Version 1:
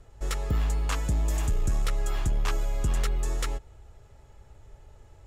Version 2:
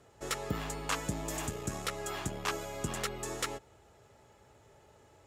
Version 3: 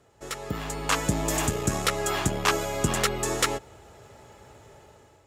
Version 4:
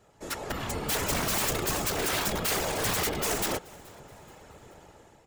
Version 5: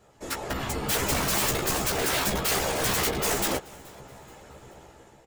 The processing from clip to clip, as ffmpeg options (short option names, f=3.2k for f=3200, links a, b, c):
-af "highpass=170"
-af "dynaudnorm=f=320:g=5:m=11dB"
-filter_complex "[0:a]aeval=exprs='(mod(12.6*val(0)+1,2)-1)/12.6':c=same,afftfilt=real='hypot(re,im)*cos(2*PI*random(0))':imag='hypot(re,im)*sin(2*PI*random(1))':win_size=512:overlap=0.75,asplit=4[a][b][c][d];[b]adelay=427,afreqshift=140,volume=-24dB[e];[c]adelay=854,afreqshift=280,volume=-31.7dB[f];[d]adelay=1281,afreqshift=420,volume=-39.5dB[g];[a][e][f][g]amix=inputs=4:normalize=0,volume=6dB"
-filter_complex "[0:a]asplit=2[a][b];[b]adelay=15,volume=-5dB[c];[a][c]amix=inputs=2:normalize=0,volume=1.5dB"